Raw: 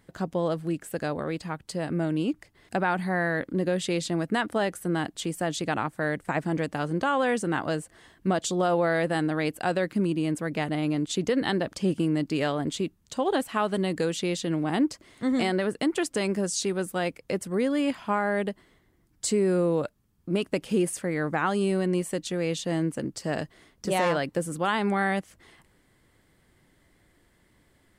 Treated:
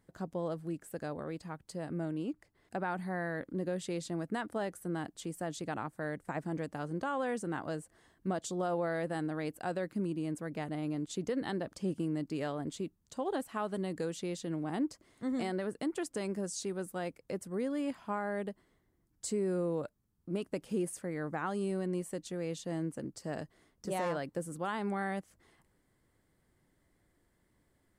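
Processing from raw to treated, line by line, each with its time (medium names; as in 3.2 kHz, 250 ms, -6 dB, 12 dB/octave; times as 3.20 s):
2.11–2.82 s: tone controls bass -2 dB, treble -3 dB
whole clip: peaking EQ 2.9 kHz -6 dB 1.5 oct; trim -9 dB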